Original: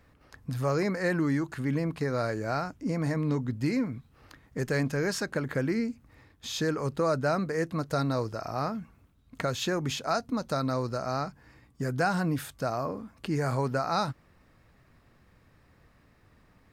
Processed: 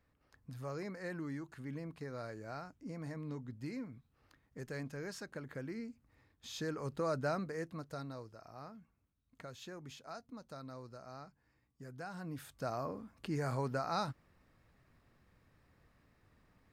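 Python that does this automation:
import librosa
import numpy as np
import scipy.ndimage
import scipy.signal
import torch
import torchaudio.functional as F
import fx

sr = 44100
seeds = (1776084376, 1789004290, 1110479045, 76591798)

y = fx.gain(x, sr, db=fx.line((5.74, -15.0), (7.26, -8.0), (8.3, -19.5), (12.08, -19.5), (12.69, -8.0)))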